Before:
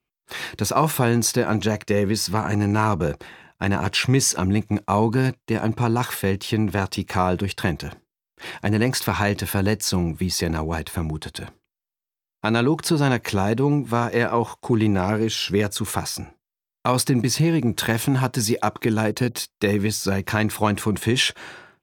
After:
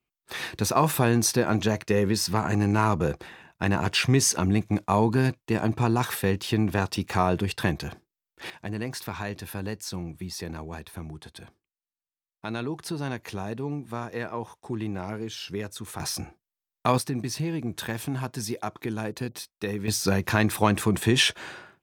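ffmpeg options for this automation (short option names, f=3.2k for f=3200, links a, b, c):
-af "asetnsamples=n=441:p=0,asendcmd='8.5 volume volume -12dB;16 volume volume -2dB;16.98 volume volume -10dB;19.88 volume volume -1dB',volume=-2.5dB"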